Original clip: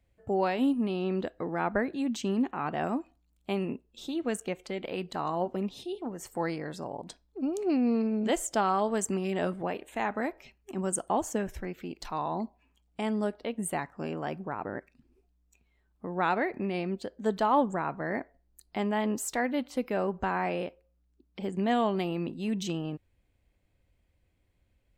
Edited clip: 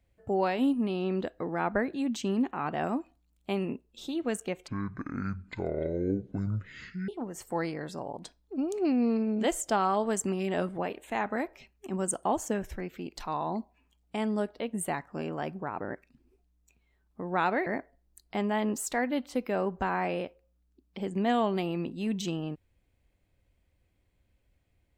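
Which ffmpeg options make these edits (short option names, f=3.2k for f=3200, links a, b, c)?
-filter_complex "[0:a]asplit=4[a][b][c][d];[a]atrim=end=4.684[e];[b]atrim=start=4.68:end=5.93,asetpts=PTS-STARTPTS,asetrate=22932,aresample=44100[f];[c]atrim=start=5.926:end=16.512[g];[d]atrim=start=18.078[h];[e][f]acrossfade=d=0.004:c1=hsin:c2=hsin[i];[i][g]acrossfade=d=0.004:c1=hsin:c2=hsin[j];[j][h]acrossfade=d=0.004:c1=hsin:c2=hsin"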